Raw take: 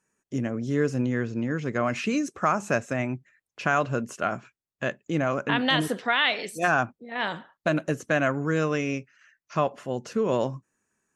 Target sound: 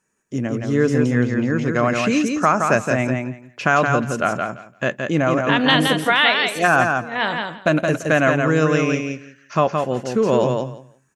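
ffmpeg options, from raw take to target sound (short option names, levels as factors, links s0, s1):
-af "aecho=1:1:170|340|510:0.596|0.0953|0.0152,dynaudnorm=f=170:g=7:m=1.41,volume=1.58"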